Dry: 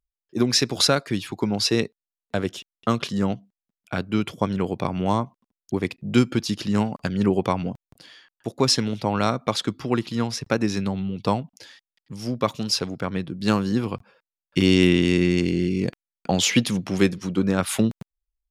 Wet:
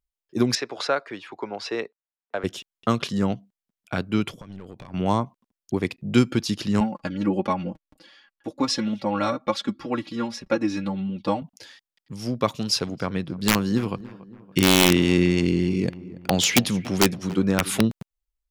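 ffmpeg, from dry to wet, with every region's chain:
-filter_complex "[0:a]asettb=1/sr,asplit=3[a][b][c];[a]atrim=end=0.554[d];[b]atrim=start=0.55:end=2.44,asetpts=PTS-STARTPTS,afade=t=in:d=0.004:c=qsin,afade=t=out:st=1.886:d=0.004:c=qsin,lowpass=7k,acrossover=split=390 2400:gain=0.0794 1 0.2[e][f][g];[e][f][g]amix=inputs=3:normalize=0[h];[c]atrim=start=2.436[i];[d][h]acrossfade=d=0.004:c1=hsin:c2=qsin[j];[j][i]acrossfade=d=0.004:c1=qsin:c2=hsin,asettb=1/sr,asplit=3[k][l][m];[k]atrim=end=4.314[n];[l]atrim=start=4.31:end=4.94,asetpts=PTS-STARTPTS,afade=t=in:d=0.004:c=qsin,afade=t=out:st=0.626:d=0.004:c=qsin,acompressor=threshold=-33dB:ratio=6:attack=3.2:release=140:knee=1:detection=peak,aeval=exprs='(tanh(35.5*val(0)+0.55)-tanh(0.55))/35.5':c=same[o];[m]atrim=start=4.936[p];[n][o]acrossfade=d=0.004:c1=hsin:c2=qsin[q];[q][p]acrossfade=d=0.004:c1=qsin:c2=hsin,asettb=1/sr,asplit=3[r][s][t];[r]atrim=end=6.804[u];[s]atrim=start=6.8:end=11.42,asetpts=PTS-STARTPTS,afade=t=in:d=0.004:c=qsin,afade=t=out:st=4.616:d=0.004:c=qsin,lowpass=f=3.4k:p=1,aecho=1:1:3.6:0.87,atrim=end_sample=203742,flanger=delay=4.6:depth=2.5:regen=26:speed=1.4:shape=triangular[v];[t]atrim=start=11.416[w];[u][v]acrossfade=d=0.004:c1=hsin:c2=qsin[x];[x][w]acrossfade=d=0.004:c1=qsin:c2=hsin,asettb=1/sr,asplit=3[y][z][aa];[y]atrim=end=12.484[ab];[z]atrim=start=12.48:end=17.81,asetpts=PTS-STARTPTS,afade=t=in:d=0.004:c=qsin,afade=t=out:st=5.326:d=0.004:c=qsin,aeval=exprs='(mod(2.51*val(0)+1,2)-1)/2.51':c=same,asplit=2[ac][ad];[ad]adelay=283,lowpass=f=1.7k:p=1,volume=-18dB,asplit=2[ae][af];[af]adelay=283,lowpass=f=1.7k:p=1,volume=0.54,asplit=2[ag][ah];[ah]adelay=283,lowpass=f=1.7k:p=1,volume=0.54,asplit=2[ai][aj];[aj]adelay=283,lowpass=f=1.7k:p=1,volume=0.54,asplit=2[ak][al];[al]adelay=283,lowpass=f=1.7k:p=1,volume=0.54[am];[ac][ae][ag][ai][ak][am]amix=inputs=6:normalize=0,atrim=end_sample=235053[an];[aa]atrim=start=17.806[ao];[ab][an]acrossfade=d=0.004:c1=hsin:c2=qsin[ap];[ap][ao]acrossfade=d=0.004:c1=qsin:c2=hsin"

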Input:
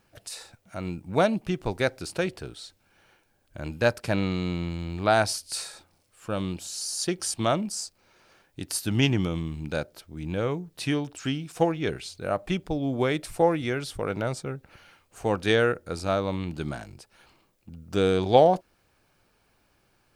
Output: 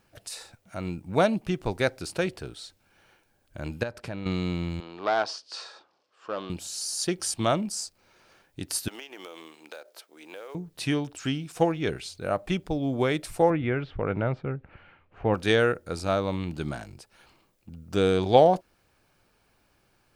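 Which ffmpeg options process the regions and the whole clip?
-filter_complex "[0:a]asettb=1/sr,asplit=3[a][b][c];[a]atrim=end=3.834[d];[b]atrim=start=3.83:end=4.26,asetpts=PTS-STARTPTS,afade=t=in:d=0.004:c=qsin,afade=t=out:st=0.426:d=0.004:c=qsin,highshelf=f=5.5k:g=-10.5,acompressor=threshold=-34dB:ratio=3:attack=3.2:release=140:knee=1:detection=peak[e];[c]atrim=start=4.256[f];[d][e]acrossfade=d=0.004:c1=hsin:c2=qsin[g];[g][f]acrossfade=d=0.004:c1=qsin:c2=hsin,asettb=1/sr,asplit=3[h][i][j];[h]atrim=end=4.804[k];[i]atrim=start=4.8:end=6.5,asetpts=PTS-STARTPTS,afade=t=in:d=0.004:c=qsin,afade=t=out:st=1.696:d=0.004:c=qsin,aeval=exprs='clip(val(0),-1,0.0596)':c=same,highpass=410,equalizer=f=420:t=q:w=4:g=3,equalizer=f=1.1k:t=q:w=4:g=5,equalizer=f=2.2k:t=q:w=4:g=-7,equalizer=f=4k:t=q:w=4:g=-3,lowpass=f=5k:w=0.5412,lowpass=f=5k:w=1.3066[l];[j]atrim=start=6.496[m];[k][l]acrossfade=d=0.004:c1=hsin:c2=qsin[n];[n][m]acrossfade=d=0.004:c1=qsin:c2=hsin,asettb=1/sr,asplit=3[o][p][q];[o]atrim=end=8.884[r];[p]atrim=start=8.88:end=10.55,asetpts=PTS-STARTPTS,afade=t=in:d=0.004:c=qsin,afade=t=out:st=1.666:d=0.004:c=qsin,highpass=f=430:w=0.5412,highpass=f=430:w=1.3066,acompressor=threshold=-37dB:ratio=16:attack=3.2:release=140:knee=1:detection=peak,acrusher=bits=5:mode=log:mix=0:aa=0.000001[s];[q]atrim=start=10.546[t];[r][s]acrossfade=d=0.004:c1=hsin:c2=qsin[u];[u][t]acrossfade=d=0.004:c1=qsin:c2=hsin,asettb=1/sr,asplit=3[v][w][x];[v]atrim=end=13.504[y];[w]atrim=start=13.5:end=15.34,asetpts=PTS-STARTPTS,afade=t=in:d=0.004:c=qsin,afade=t=out:st=1.836:d=0.004:c=qsin,lowpass=f=2.7k:w=0.5412,lowpass=f=2.7k:w=1.3066,lowshelf=f=160:g=6[z];[x]atrim=start=15.336[aa];[y][z]acrossfade=d=0.004:c1=hsin:c2=qsin[ab];[ab][aa]acrossfade=d=0.004:c1=qsin:c2=hsin"

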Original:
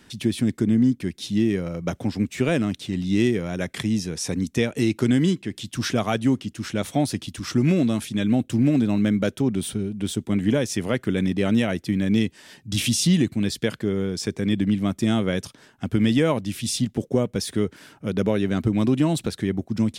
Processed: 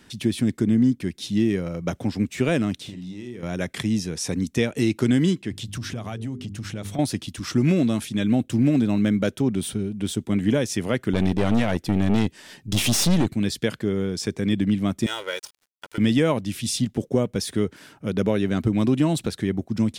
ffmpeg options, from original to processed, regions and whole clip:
-filter_complex "[0:a]asettb=1/sr,asplit=3[a][b][c];[a]atrim=end=2.814[d];[b]atrim=start=2.81:end=3.43,asetpts=PTS-STARTPTS,afade=t=in:d=0.004:c=qsin,afade=t=out:st=0.616:d=0.004:c=qsin,acompressor=threshold=-33dB:ratio=10:attack=3.2:release=140:knee=1:detection=peak,asplit=2[e][f];[f]adelay=49,volume=-8dB[g];[e][g]amix=inputs=2:normalize=0,atrim=end_sample=27342[h];[c]atrim=start=3.426[i];[d][h]acrossfade=d=0.004:c1=hsin:c2=qsin[j];[j][i]acrossfade=d=0.004:c1=qsin:c2=hsin,asettb=1/sr,asplit=3[k][l][m];[k]atrim=end=5.514[n];[l]atrim=start=5.51:end=6.99,asetpts=PTS-STARTPTS,afade=t=in:d=0.004:c=qsin,afade=t=out:st=1.476:d=0.004:c=qsin,equalizer=f=95:w=1:g=11,bandreject=f=50:t=h:w=6,bandreject=f=100:t=h:w=6,bandreject=f=150:t=h:w=6,bandreject=f=200:t=h:w=6,bandreject=f=250:t=h:w=6,bandreject=f=300:t=h:w=6,bandreject=f=350:t=h:w=6,bandreject=f=400:t=h:w=6,bandreject=f=450:t=h:w=6,acompressor=threshold=-28dB:ratio=5:attack=3.2:release=140:knee=1:detection=peak[o];[m]atrim=start=6.986[p];[n][o]acrossfade=d=0.004:c1=hsin:c2=qsin[q];[q][p]acrossfade=d=0.004:c1=qsin:c2=hsin,asettb=1/sr,asplit=3[r][s][t];[r]atrim=end=11.134[u];[s]atrim=start=11.13:end=13.34,asetpts=PTS-STARTPTS,afade=t=in:d=0.004:c=qsin,afade=t=out:st=2.206:d=0.004:c=qsin,acontrast=67,aeval=exprs='(tanh(6.31*val(0)+0.75)-tanh(0.75))/6.31':c=same[v];[t]atrim=start=13.336[w];[u][v]acrossfade=d=0.004:c1=hsin:c2=qsin[x];[x][w]acrossfade=d=0.004:c1=qsin:c2=hsin,asettb=1/sr,asplit=3[y][z][aa];[y]atrim=end=15.064[ab];[z]atrim=start=15.06:end=15.98,asetpts=PTS-STARTPTS,afade=t=in:d=0.004:c=qsin,afade=t=out:st=0.916:d=0.004:c=qsin,highpass=760,aecho=1:1:2.1:0.95,atrim=end_sample=40572,aeval=exprs='sgn(val(0))*max(abs(val(0))-0.00708,0)':c=same[ac];[aa]atrim=start=15.976[ad];[ab][ac]acrossfade=d=0.004:c1=hsin:c2=qsin[ae];[ae][ad]acrossfade=d=0.004:c1=qsin:c2=hsin"

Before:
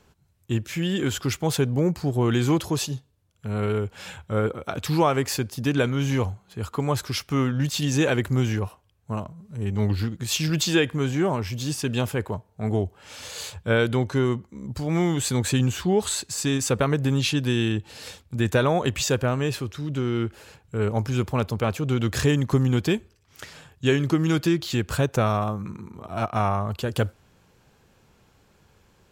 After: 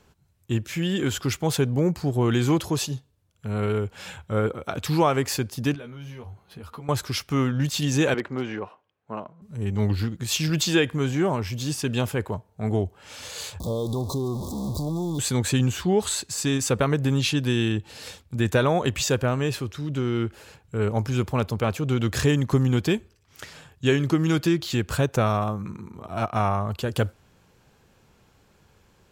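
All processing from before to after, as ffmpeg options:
-filter_complex "[0:a]asettb=1/sr,asplit=3[a][b][c];[a]atrim=end=5.744[d];[b]atrim=start=5.74:end=6.89,asetpts=PTS-STARTPTS,afade=t=in:d=0.004:c=qsin,afade=t=out:st=1.146:d=0.004:c=qsin,equalizer=f=7.2k:t=o:w=0.32:g=-12.5,acompressor=threshold=-37dB:ratio=8:attack=3.2:release=140:knee=1:detection=peak,asplit=2[e][f];[f]adelay=13,volume=-4.5dB[g];[e][g]amix=inputs=2:normalize=0,atrim=end_sample=50715[h];[c]atrim=start=6.886[i];[d][h]acrossfade=d=0.004:c1=hsin:c2=qsin[j];[j][i]acrossfade=d=0.004:c1=qsin:c2=hsin,asettb=1/sr,asplit=3[k][l][m];[k]atrim=end=8.144[n];[l]atrim=start=8.14:end=9.42,asetpts=PTS-STARTPTS,afade=t=in:d=0.004:c=qsin,afade=t=out:st=1.276:d=0.004:c=qsin,highpass=280,lowpass=2.6k,aeval=exprs='0.133*(abs(mod(val(0)/0.133+3,4)-2)-1)':c=same[o];[m]atrim=start=9.416[p];[n][o]acrossfade=d=0.004:c1=hsin:c2=qsin[q];[q][p]acrossfade=d=0.004:c1=qsin:c2=hsin,asettb=1/sr,asplit=3[r][s][t];[r]atrim=end=13.604[u];[s]atrim=start=13.6:end=15.19,asetpts=PTS-STARTPTS,afade=t=in:d=0.004:c=qsin,afade=t=out:st=1.586:d=0.004:c=qsin,aeval=exprs='val(0)+0.5*0.0447*sgn(val(0))':c=same,acompressor=threshold=-25dB:ratio=3:attack=3.2:release=140:knee=1:detection=peak,asuperstop=centerf=2000:order=20:qfactor=0.87[v];[t]atrim=start=15.186[w];[u][v]acrossfade=d=0.004:c1=hsin:c2=qsin[x];[x][w]acrossfade=d=0.004:c1=qsin:c2=hsin"

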